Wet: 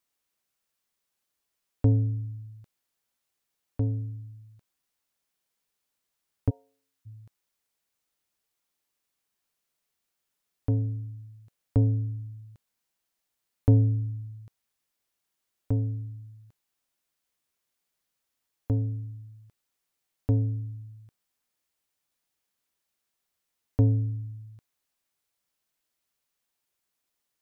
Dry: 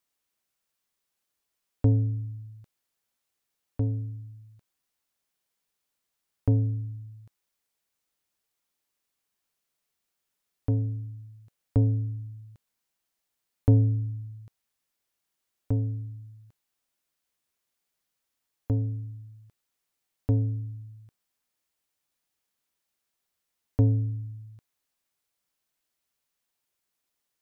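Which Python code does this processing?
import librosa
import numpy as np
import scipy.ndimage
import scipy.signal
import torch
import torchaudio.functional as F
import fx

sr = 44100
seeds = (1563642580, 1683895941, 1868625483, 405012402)

y = fx.highpass(x, sr, hz=760.0, slope=24, at=(6.49, 7.05), fade=0.02)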